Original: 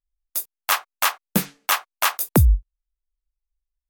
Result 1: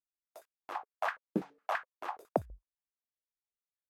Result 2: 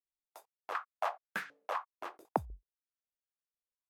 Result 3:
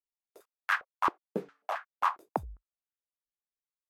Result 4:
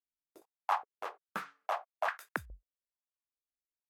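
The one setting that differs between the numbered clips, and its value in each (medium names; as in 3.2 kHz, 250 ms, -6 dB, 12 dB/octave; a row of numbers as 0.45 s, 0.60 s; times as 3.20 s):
step-sequenced band-pass, rate: 12 Hz, 4 Hz, 7.4 Hz, 2.4 Hz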